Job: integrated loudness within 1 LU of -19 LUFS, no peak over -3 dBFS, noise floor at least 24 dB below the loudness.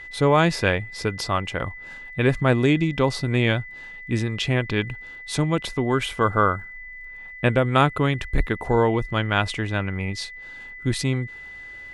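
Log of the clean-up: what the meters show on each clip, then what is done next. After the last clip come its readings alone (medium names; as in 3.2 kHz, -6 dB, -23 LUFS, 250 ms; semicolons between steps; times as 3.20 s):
tick rate 24 per s; steady tone 2 kHz; tone level -37 dBFS; loudness -23.0 LUFS; peak level -3.5 dBFS; loudness target -19.0 LUFS
-> de-click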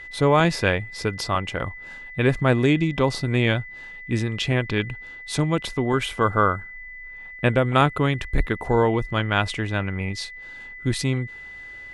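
tick rate 0 per s; steady tone 2 kHz; tone level -37 dBFS
-> band-stop 2 kHz, Q 30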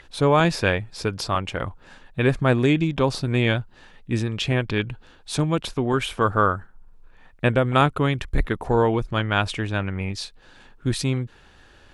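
steady tone not found; loudness -23.0 LUFS; peak level -4.0 dBFS; loudness target -19.0 LUFS
-> trim +4 dB; peak limiter -3 dBFS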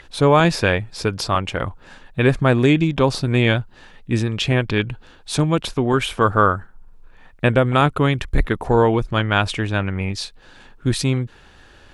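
loudness -19.5 LUFS; peak level -3.0 dBFS; noise floor -48 dBFS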